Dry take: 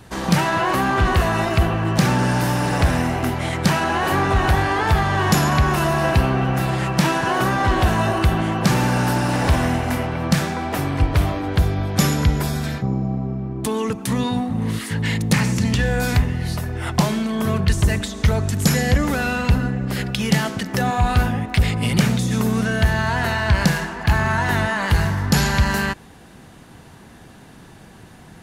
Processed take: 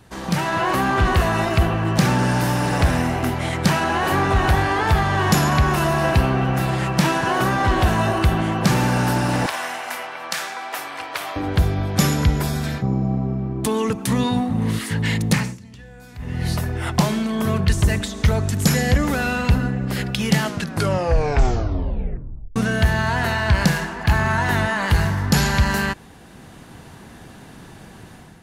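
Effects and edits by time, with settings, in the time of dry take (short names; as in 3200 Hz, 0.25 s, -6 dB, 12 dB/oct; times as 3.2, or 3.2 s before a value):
9.46–11.36 HPF 860 Hz
15.29–16.47 dip -23.5 dB, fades 0.29 s
20.42 tape stop 2.14 s
whole clip: AGC gain up to 8 dB; gain -5.5 dB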